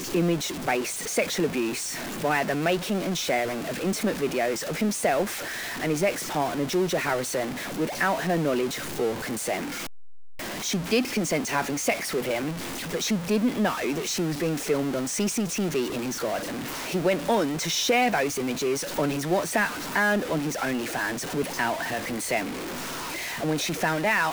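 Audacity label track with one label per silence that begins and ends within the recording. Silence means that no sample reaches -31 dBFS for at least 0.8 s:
9.680000	10.640000	silence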